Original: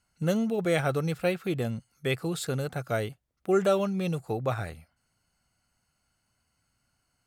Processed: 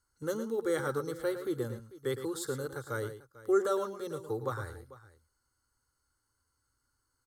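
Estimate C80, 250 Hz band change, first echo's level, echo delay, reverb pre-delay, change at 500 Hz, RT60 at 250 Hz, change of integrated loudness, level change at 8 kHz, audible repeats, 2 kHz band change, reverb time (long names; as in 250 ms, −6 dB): no reverb audible, −7.5 dB, −10.5 dB, 111 ms, no reverb audible, −4.0 dB, no reverb audible, −5.5 dB, −2.5 dB, 2, −6.5 dB, no reverb audible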